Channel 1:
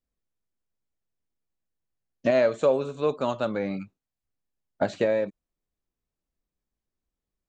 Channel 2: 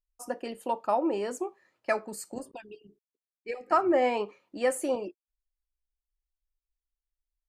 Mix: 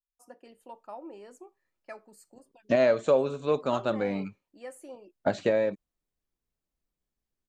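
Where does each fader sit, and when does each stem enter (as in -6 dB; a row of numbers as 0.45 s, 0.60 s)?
-1.0 dB, -16.0 dB; 0.45 s, 0.00 s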